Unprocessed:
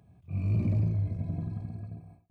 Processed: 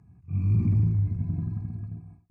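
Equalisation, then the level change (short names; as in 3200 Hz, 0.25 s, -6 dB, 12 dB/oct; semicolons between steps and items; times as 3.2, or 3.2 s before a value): air absorption 71 m; bell 1600 Hz -5 dB 1.1 oct; fixed phaser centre 1400 Hz, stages 4; +5.0 dB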